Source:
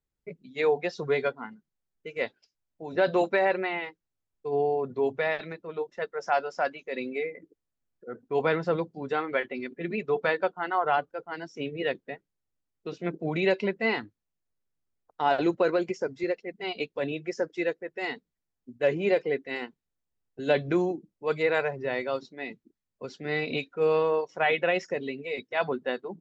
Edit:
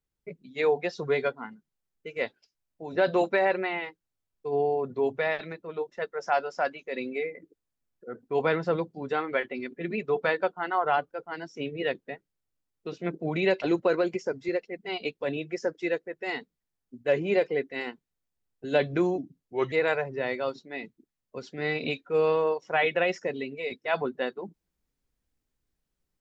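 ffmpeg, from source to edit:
-filter_complex "[0:a]asplit=4[a][b][c][d];[a]atrim=end=13.622[e];[b]atrim=start=15.368:end=20.934[f];[c]atrim=start=20.93:end=21.39,asetpts=PTS-STARTPTS,asetrate=37485,aresample=44100[g];[d]atrim=start=21.386[h];[e][f]acrossfade=d=0.004:c1=hsin:c2=hsin[i];[i][g]acrossfade=d=0.004:c1=hsin:c2=hsin[j];[j][h]acrossfade=d=0.004:c1=hsin:c2=hsin"

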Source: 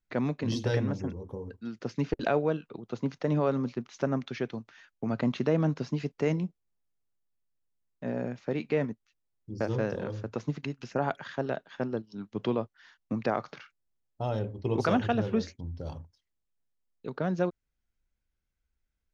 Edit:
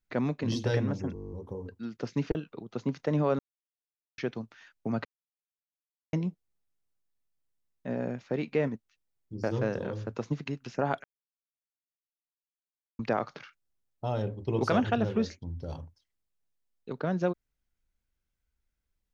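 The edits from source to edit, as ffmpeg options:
-filter_complex "[0:a]asplit=17[a][b][c][d][e][f][g][h][i][j][k][l][m][n][o][p][q];[a]atrim=end=1.162[r];[b]atrim=start=1.138:end=1.162[s];[c]atrim=start=1.138:end=1.162[t];[d]atrim=start=1.138:end=1.162[u];[e]atrim=start=1.138:end=1.162[v];[f]atrim=start=1.138:end=1.162[w];[g]atrim=start=1.138:end=1.162[x];[h]atrim=start=1.138:end=1.162[y];[i]atrim=start=1.138:end=1.162[z];[j]atrim=start=1.138:end=2.172[aa];[k]atrim=start=2.518:end=3.56,asetpts=PTS-STARTPTS,afade=t=out:st=1.038:d=0.004:c=hsin[ab];[l]atrim=start=3.56:end=4.35,asetpts=PTS-STARTPTS,volume=0[ac];[m]atrim=start=4.35:end=5.22,asetpts=PTS-STARTPTS,afade=t=in:d=0.004:c=hsin,afade=t=out:st=0.866:d=0.004:c=hsin[ad];[n]atrim=start=5.22:end=6.3,asetpts=PTS-STARTPTS,volume=0[ae];[o]atrim=start=6.3:end=11.21,asetpts=PTS-STARTPTS,afade=t=in:d=0.004:c=hsin,afade=t=out:st=4.906:d=0.004:c=hsin[af];[p]atrim=start=11.21:end=13.16,asetpts=PTS-STARTPTS,volume=0[ag];[q]atrim=start=13.16,asetpts=PTS-STARTPTS,afade=t=in:d=0.004:c=hsin[ah];[r][s]acrossfade=d=0.004:c1=hsin:c2=hsin[ai];[ai][t]acrossfade=d=0.004:c1=hsin:c2=hsin[aj];[aj][u]acrossfade=d=0.004:c1=hsin:c2=hsin[ak];[ak][v]acrossfade=d=0.004:c1=hsin:c2=hsin[al];[al][w]acrossfade=d=0.004:c1=hsin:c2=hsin[am];[am][x]acrossfade=d=0.004:c1=hsin:c2=hsin[an];[an][y]acrossfade=d=0.004:c1=hsin:c2=hsin[ao];[ao][z]acrossfade=d=0.004:c1=hsin:c2=hsin[ap];[ap][aa]acrossfade=d=0.004:c1=hsin:c2=hsin[aq];[ab][ac][ad][ae][af][ag][ah]concat=n=7:v=0:a=1[ar];[aq][ar]acrossfade=d=0.004:c1=hsin:c2=hsin"

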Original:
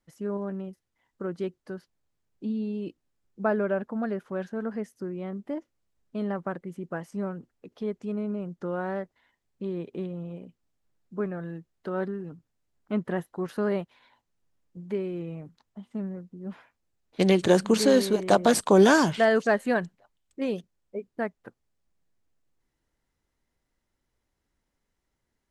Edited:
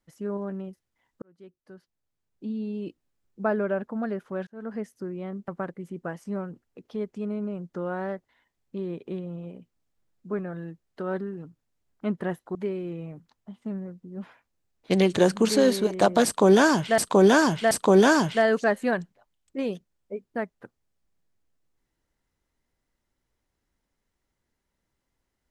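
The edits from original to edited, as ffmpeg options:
-filter_complex "[0:a]asplit=7[a][b][c][d][e][f][g];[a]atrim=end=1.22,asetpts=PTS-STARTPTS,afade=t=out:st=1.216:d=0.004:c=hsin[h];[b]atrim=start=1.22:end=4.47,asetpts=PTS-STARTPTS,afade=t=in:d=1.6,afade=t=out:st=3.246:d=0.004:c=hsin[i];[c]atrim=start=4.47:end=5.482,asetpts=PTS-STARTPTS,afade=t=in:d=0.29[j];[d]atrim=start=6.348:end=13.422[k];[e]atrim=start=14.838:end=19.272[l];[f]atrim=start=18.538:end=19.272[m];[g]atrim=start=18.538[n];[h][i][j]concat=n=3:v=0:a=1[o];[o][k]acrossfade=d=0.004:c1=hsin:c2=hsin[p];[p][l]acrossfade=d=0.004:c1=hsin:c2=hsin[q];[q][m]acrossfade=d=0.004:c1=hsin:c2=hsin[r];[r][n]acrossfade=d=0.004:c1=hsin:c2=hsin"

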